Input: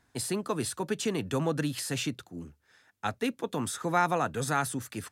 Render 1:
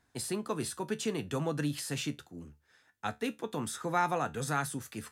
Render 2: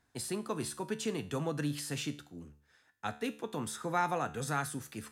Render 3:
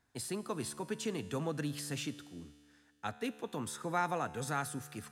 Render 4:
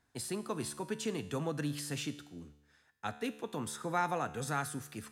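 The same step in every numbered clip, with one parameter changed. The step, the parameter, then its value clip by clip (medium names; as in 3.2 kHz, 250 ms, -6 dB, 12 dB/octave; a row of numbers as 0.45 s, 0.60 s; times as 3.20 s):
feedback comb, decay: 0.19 s, 0.44 s, 2.2 s, 0.95 s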